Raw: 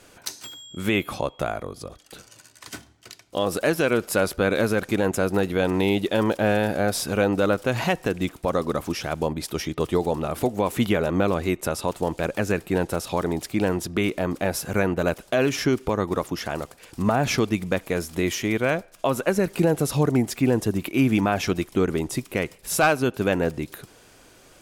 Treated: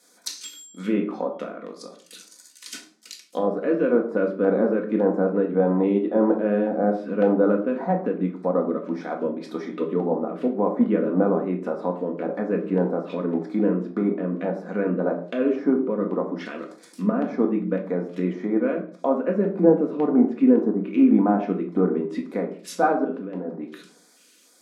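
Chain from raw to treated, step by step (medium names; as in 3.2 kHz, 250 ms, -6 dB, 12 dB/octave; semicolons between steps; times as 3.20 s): 12.46–13.43 s: jump at every zero crossing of -37 dBFS; low-pass that closes with the level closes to 900 Hz, closed at -22 dBFS; 23.04–23.56 s: compressor with a negative ratio -30 dBFS, ratio -1; LFO notch square 1.8 Hz 800–2800 Hz; brick-wall FIR high-pass 180 Hz; simulated room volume 500 m³, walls furnished, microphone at 1.9 m; three bands expanded up and down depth 40%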